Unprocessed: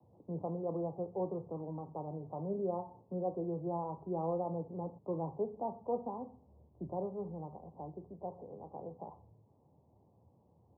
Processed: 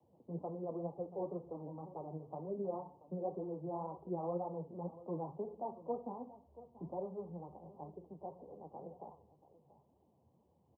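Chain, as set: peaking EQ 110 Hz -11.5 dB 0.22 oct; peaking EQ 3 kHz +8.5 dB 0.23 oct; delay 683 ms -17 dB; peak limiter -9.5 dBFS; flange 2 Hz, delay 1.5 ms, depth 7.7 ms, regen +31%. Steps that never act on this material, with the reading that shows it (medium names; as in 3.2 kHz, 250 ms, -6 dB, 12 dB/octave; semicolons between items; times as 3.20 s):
peaking EQ 3 kHz: input has nothing above 1.1 kHz; peak limiter -9.5 dBFS: peak at its input -23.5 dBFS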